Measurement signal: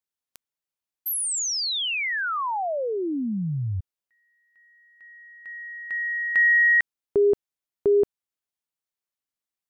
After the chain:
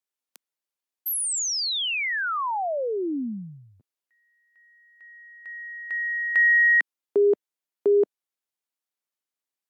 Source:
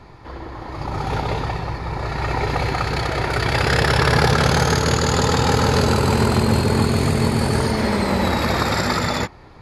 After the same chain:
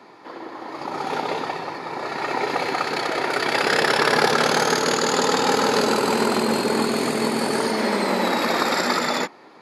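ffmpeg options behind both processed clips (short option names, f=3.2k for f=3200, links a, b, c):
-af "highpass=f=230:w=0.5412,highpass=f=230:w=1.3066" -ar 48000 -c:a aac -b:a 192k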